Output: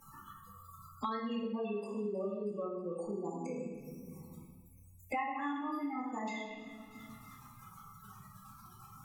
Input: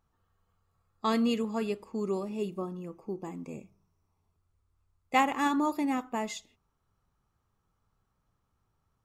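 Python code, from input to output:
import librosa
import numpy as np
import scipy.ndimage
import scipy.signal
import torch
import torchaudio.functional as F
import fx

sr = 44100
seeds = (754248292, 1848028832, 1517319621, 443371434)

y = fx.law_mismatch(x, sr, coded='mu')
y = scipy.signal.lfilter([1.0, -0.9], [1.0], y)
y = fx.spec_gate(y, sr, threshold_db=-10, keep='strong')
y = fx.env_lowpass_down(y, sr, base_hz=3000.0, full_db=-41.5)
y = fx.peak_eq(y, sr, hz=570.0, db=12.0, octaves=0.99, at=(1.43, 3.54))
y = fx.echo_wet_highpass(y, sr, ms=317, feedback_pct=37, hz=1500.0, wet_db=-24.0)
y = fx.room_shoebox(y, sr, seeds[0], volume_m3=380.0, walls='mixed', distance_m=2.2)
y = fx.band_squash(y, sr, depth_pct=100)
y = F.gain(torch.from_numpy(y), 1.0).numpy()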